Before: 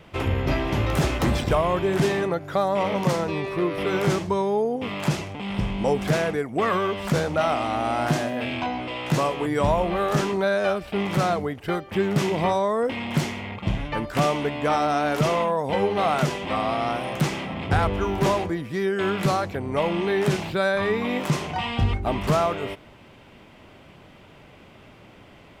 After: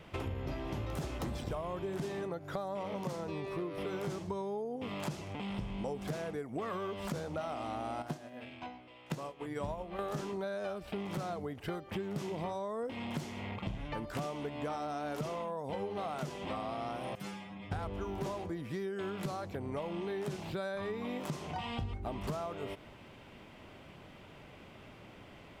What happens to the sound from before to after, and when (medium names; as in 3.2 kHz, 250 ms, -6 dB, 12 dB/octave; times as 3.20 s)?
8.02–9.99 s: upward expansion 2.5:1, over -31 dBFS
17.15–17.72 s: inharmonic resonator 99 Hz, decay 0.54 s, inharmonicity 0.002
whole clip: dynamic bell 2.1 kHz, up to -5 dB, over -39 dBFS, Q 0.95; compression 6:1, threshold -31 dBFS; trim -4.5 dB